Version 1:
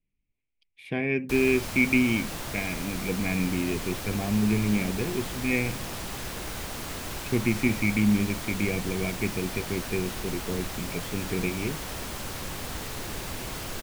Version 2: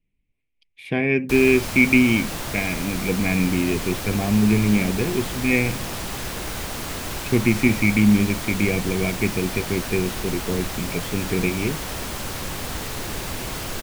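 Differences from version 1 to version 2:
speech +6.5 dB; background +5.5 dB

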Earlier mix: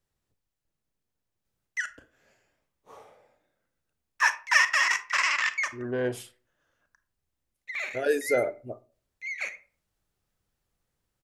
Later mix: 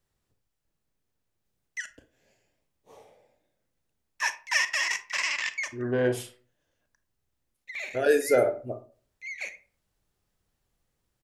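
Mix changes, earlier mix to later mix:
speech: send +11.0 dB; background: add bell 1300 Hz -14 dB 0.71 oct

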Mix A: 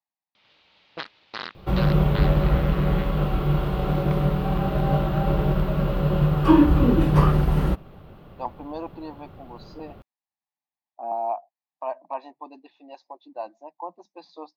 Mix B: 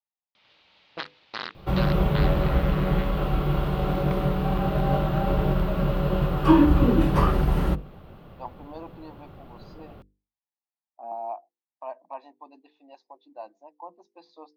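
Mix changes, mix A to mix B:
speech -6.5 dB; master: add notches 50/100/150/200/250/300/350/400/450/500 Hz

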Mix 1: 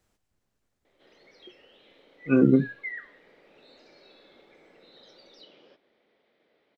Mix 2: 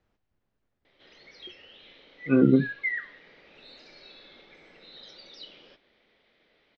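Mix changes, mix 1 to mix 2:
background: remove band-pass 450 Hz, Q 0.58; master: add air absorption 210 m

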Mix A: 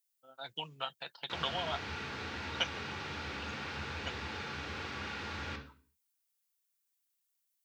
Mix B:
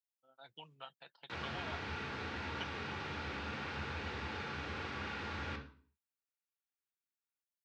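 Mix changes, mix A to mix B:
speech -10.5 dB; master: add high shelf 4500 Hz -9.5 dB

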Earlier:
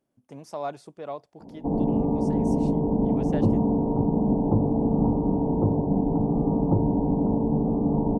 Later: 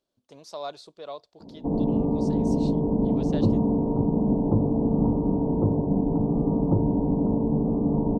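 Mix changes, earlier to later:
speech: add graphic EQ 125/250/2000/4000 Hz -10/-8/-6/+8 dB; master: add thirty-one-band EQ 800 Hz -6 dB, 4000 Hz +7 dB, 10000 Hz -7 dB

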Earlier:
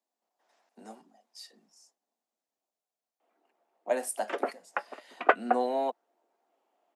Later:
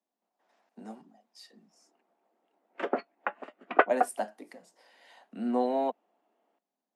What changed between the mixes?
background: entry -1.50 s; master: add tone controls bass +11 dB, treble -7 dB

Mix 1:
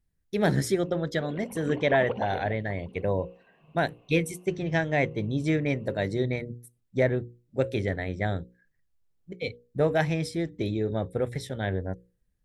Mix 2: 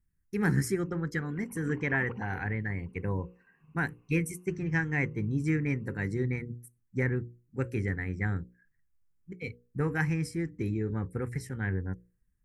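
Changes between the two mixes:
background -4.0 dB; master: add fixed phaser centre 1500 Hz, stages 4

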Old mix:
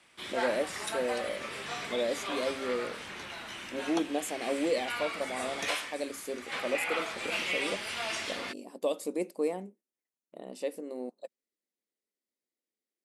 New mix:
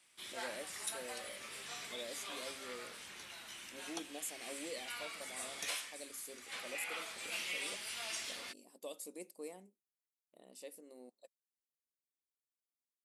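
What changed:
speech -3.5 dB; master: add pre-emphasis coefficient 0.8

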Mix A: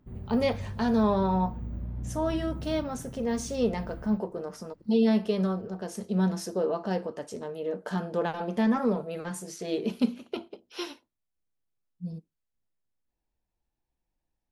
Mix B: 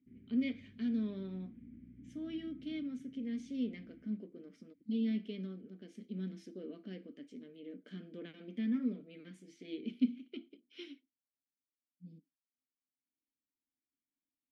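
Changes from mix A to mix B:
background: add fixed phaser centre 2000 Hz, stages 4; master: add vowel filter i

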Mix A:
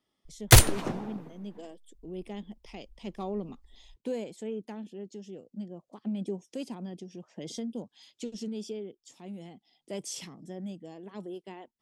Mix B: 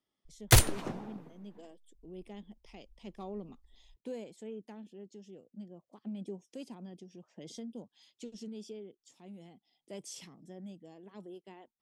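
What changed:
speech -7.5 dB; background -5.5 dB

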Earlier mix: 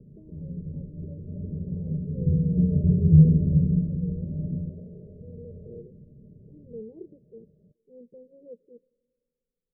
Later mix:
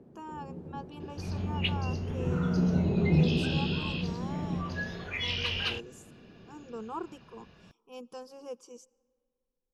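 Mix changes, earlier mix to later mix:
speech -4.5 dB; first sound: add band-pass 480 Hz, Q 1.2; master: remove rippled Chebyshev low-pass 620 Hz, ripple 9 dB

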